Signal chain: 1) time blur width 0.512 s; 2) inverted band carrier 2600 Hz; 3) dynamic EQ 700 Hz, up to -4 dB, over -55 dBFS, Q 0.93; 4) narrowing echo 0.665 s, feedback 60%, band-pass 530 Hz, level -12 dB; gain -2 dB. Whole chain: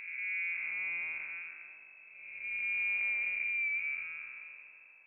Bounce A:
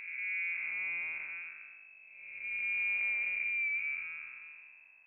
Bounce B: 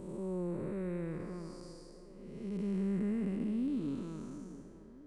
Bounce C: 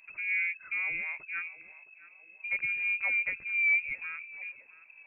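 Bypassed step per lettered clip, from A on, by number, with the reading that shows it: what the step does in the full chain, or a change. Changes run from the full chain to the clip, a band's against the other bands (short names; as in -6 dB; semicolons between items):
4, echo-to-direct -15.0 dB to none; 2, momentary loudness spread change -1 LU; 1, momentary loudness spread change -3 LU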